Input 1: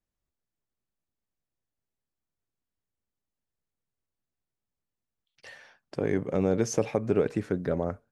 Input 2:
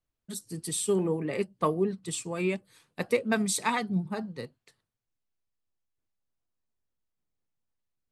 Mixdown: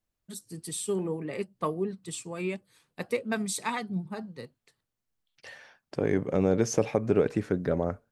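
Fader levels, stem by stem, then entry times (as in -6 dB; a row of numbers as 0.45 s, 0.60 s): +1.0 dB, -3.5 dB; 0.00 s, 0.00 s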